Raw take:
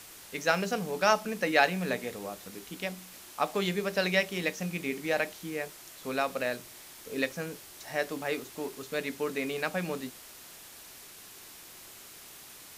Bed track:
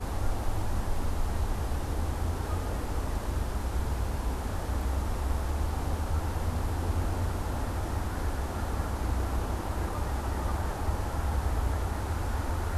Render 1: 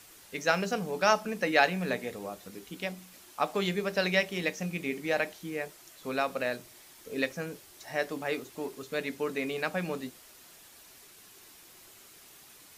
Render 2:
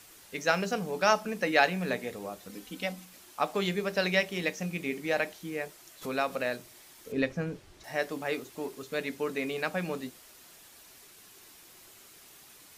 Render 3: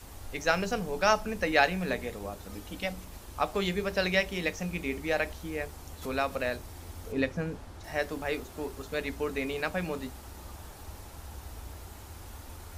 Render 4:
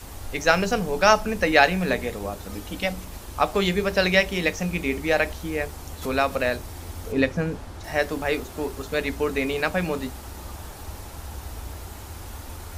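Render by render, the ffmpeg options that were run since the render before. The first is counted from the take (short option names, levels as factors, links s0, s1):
-af "afftdn=nr=6:nf=-50"
-filter_complex "[0:a]asettb=1/sr,asplit=3[s0][s1][s2];[s0]atrim=end=2.494[s3];[s1]atrim=start=2.49:end=3.05,asetpts=PTS-STARTPTS,afade=t=in:d=0.004:c=qsin,afade=t=out:st=0.556:d=0.004:c=qsin,aecho=1:1:3.9:0.65,atrim=end_sample=24696[s4];[s2]atrim=start=3.046[s5];[s3][s4]acrossfade=d=0.004:c1=hsin:c2=qsin[s6];[s6][s5]acrossfade=d=0.004:c1=qsin:c2=hsin,asplit=3[s7][s8][s9];[s7]afade=t=out:st=6.01:d=0.02[s10];[s8]acompressor=mode=upward:threshold=0.0251:ratio=2.5:attack=3.2:release=140:knee=2.83:detection=peak,afade=t=in:st=6.01:d=0.02,afade=t=out:st=6.49:d=0.02[s11];[s9]afade=t=in:st=6.49:d=0.02[s12];[s10][s11][s12]amix=inputs=3:normalize=0,asettb=1/sr,asplit=3[s13][s14][s15];[s13]atrim=end=7.124[s16];[s14]atrim=start=7.12:end=7.84,asetpts=PTS-STARTPTS,afade=t=in:d=0.004:c=qsin,afade=t=out:st=0.716:d=0.004:c=qsin,aemphasis=mode=reproduction:type=bsi[s17];[s15]atrim=start=7.836[s18];[s16][s17]acrossfade=d=0.004:c1=hsin:c2=qsin[s19];[s19][s18]acrossfade=d=0.004:c1=qsin:c2=hsin"
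-filter_complex "[1:a]volume=0.178[s0];[0:a][s0]amix=inputs=2:normalize=0"
-af "volume=2.37,alimiter=limit=0.794:level=0:latency=1"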